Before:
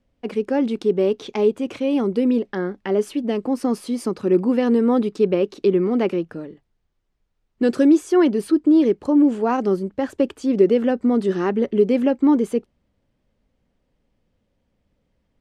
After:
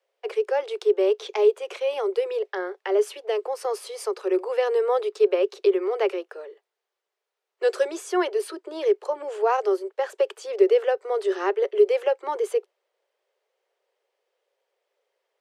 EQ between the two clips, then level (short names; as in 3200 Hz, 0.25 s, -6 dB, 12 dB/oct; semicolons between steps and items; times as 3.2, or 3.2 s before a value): steep high-pass 380 Hz 96 dB/oct; 0.0 dB